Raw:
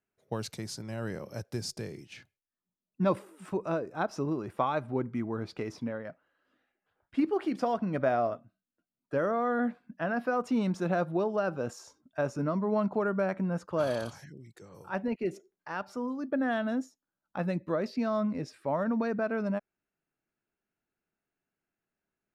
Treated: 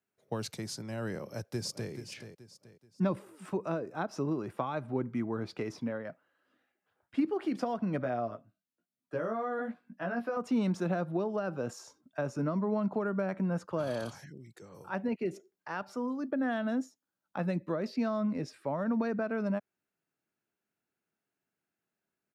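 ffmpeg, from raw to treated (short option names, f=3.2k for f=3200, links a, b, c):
-filter_complex "[0:a]asplit=2[a][b];[b]afade=t=in:st=1.22:d=0.01,afade=t=out:st=1.91:d=0.01,aecho=0:1:430|860|1290|1720:0.316228|0.11068|0.0387379|0.0135583[c];[a][c]amix=inputs=2:normalize=0,asettb=1/sr,asplit=3[d][e][f];[d]atrim=end=8.034[g];[e]atrim=start=8.03:end=10.37,asetpts=PTS-STARTPTS,afade=t=in:d=0.004:c=qsin,afade=t=out:st=2.336:d=0.004:c=qsin,flanger=delay=16:depth=3.1:speed=1[h];[f]atrim=start=10.366[i];[g][h]acrossfade=d=0.004:c1=hsin:c2=qsin[j];[j][i]acrossfade=d=0.004:c1=qsin:c2=hsin,highpass=93,acrossover=split=270[k][l];[l]acompressor=threshold=-31dB:ratio=6[m];[k][m]amix=inputs=2:normalize=0"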